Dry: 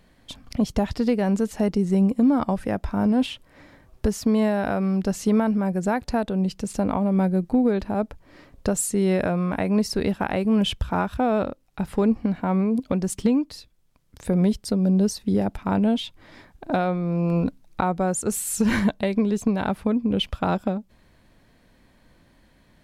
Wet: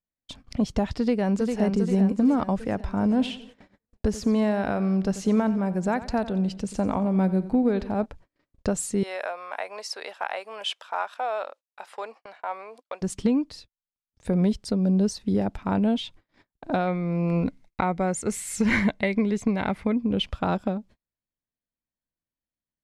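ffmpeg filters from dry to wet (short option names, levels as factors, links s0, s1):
-filter_complex "[0:a]asplit=2[s0][s1];[s1]afade=t=in:st=0.98:d=0.01,afade=t=out:st=1.61:d=0.01,aecho=0:1:400|800|1200|1600|2000|2400|2800:0.562341|0.309288|0.170108|0.0935595|0.0514577|0.0283018|0.015566[s2];[s0][s2]amix=inputs=2:normalize=0,asplit=3[s3][s4][s5];[s3]afade=t=out:st=3.1:d=0.02[s6];[s4]aecho=1:1:89|178|267|356:0.178|0.0782|0.0344|0.0151,afade=t=in:st=3.1:d=0.02,afade=t=out:st=8.04:d=0.02[s7];[s5]afade=t=in:st=8.04:d=0.02[s8];[s6][s7][s8]amix=inputs=3:normalize=0,asettb=1/sr,asplit=3[s9][s10][s11];[s9]atrim=end=9.034[s12];[s10]atrim=start=9.03:end=13.02,asetpts=PTS-STARTPTS,afade=t=in:d=0.004:c=qsin,afade=t=out:st=3.986:d=0.004:c=qsin,highpass=f=620:w=0.5412,highpass=f=620:w=1.3066[s13];[s11]atrim=start=13.016[s14];[s12][s13]acrossfade=d=0.004:c1=hsin:c2=qsin[s15];[s15][s14]acrossfade=d=0.004:c1=qsin:c2=hsin,asettb=1/sr,asplit=3[s16][s17][s18];[s16]atrim=end=16.874[s19];[s17]atrim=start=16.87:end=19.96,asetpts=PTS-STARTPTS,afade=t=in:d=0.004:c=qsin,afade=t=out:st=3.086:d=0.004:c=qsin,equalizer=f=2100:w=6.2:g=14[s20];[s18]atrim=start=19.956[s21];[s19][s20]acrossfade=d=0.004:c1=hsin:c2=qsin[s22];[s22][s21]acrossfade=d=0.004:c1=qsin:c2=hsin,agate=range=0.0126:threshold=0.00631:ratio=16:detection=peak,lowpass=8100,volume=0.794"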